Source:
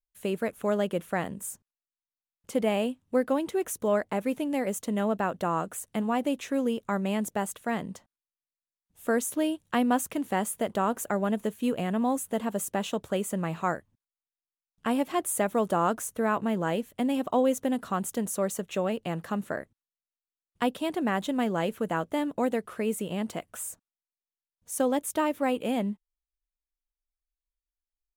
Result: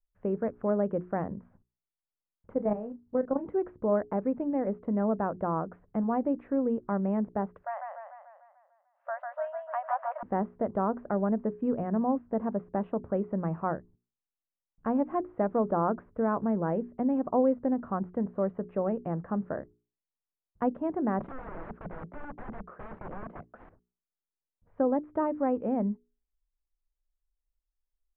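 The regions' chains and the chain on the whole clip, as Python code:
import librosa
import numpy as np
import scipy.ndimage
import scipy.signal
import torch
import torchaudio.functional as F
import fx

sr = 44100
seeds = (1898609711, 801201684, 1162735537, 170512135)

y = fx.chain(x, sr, fx.doubler(ms=29.0, db=-8),
    fx.level_steps(step_db=12),
    fx.resample_linear(factor=6), at=(2.51, 3.46))
y = fx.chain(y, sr, fx.brickwall_highpass(low_hz=540.0),
    fx.echo_warbled(ms=148, feedback_pct=57, rate_hz=2.8, cents=112, wet_db=-4.0), at=(7.62, 10.23))
y = fx.chain(y, sr, fx.steep_highpass(hz=150.0, slope=96),
    fx.overflow_wrap(gain_db=31.5), at=(21.19, 23.7))
y = scipy.signal.sosfilt(scipy.signal.bessel(6, 970.0, 'lowpass', norm='mag', fs=sr, output='sos'), y)
y = fx.low_shelf(y, sr, hz=60.0, db=11.5)
y = fx.hum_notches(y, sr, base_hz=60, count=7)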